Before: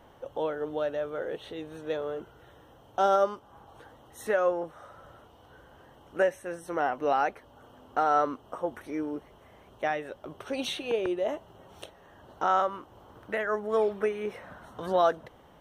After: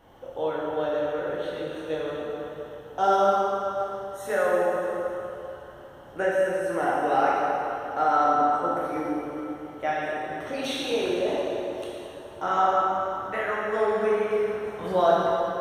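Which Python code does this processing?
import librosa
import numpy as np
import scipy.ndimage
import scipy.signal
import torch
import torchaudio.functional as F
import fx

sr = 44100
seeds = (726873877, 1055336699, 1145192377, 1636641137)

y = fx.rev_plate(x, sr, seeds[0], rt60_s=3.1, hf_ratio=0.8, predelay_ms=0, drr_db=-6.5)
y = y * librosa.db_to_amplitude(-2.5)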